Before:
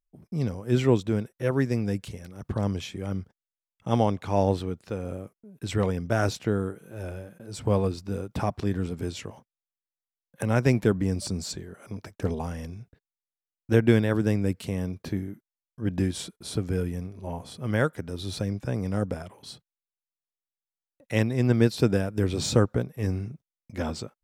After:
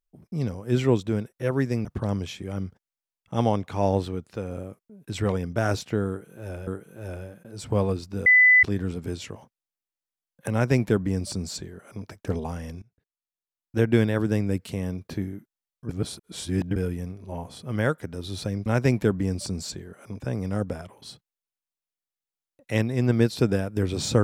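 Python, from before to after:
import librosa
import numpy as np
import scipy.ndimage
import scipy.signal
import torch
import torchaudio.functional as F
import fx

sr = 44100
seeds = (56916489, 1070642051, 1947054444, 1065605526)

y = fx.edit(x, sr, fx.cut(start_s=1.85, length_s=0.54),
    fx.repeat(start_s=6.62, length_s=0.59, count=2),
    fx.bleep(start_s=8.21, length_s=0.37, hz=2000.0, db=-12.0),
    fx.duplicate(start_s=10.47, length_s=1.54, to_s=18.61),
    fx.fade_in_from(start_s=12.77, length_s=1.22, floor_db=-21.0),
    fx.reverse_span(start_s=15.84, length_s=0.87), tone=tone)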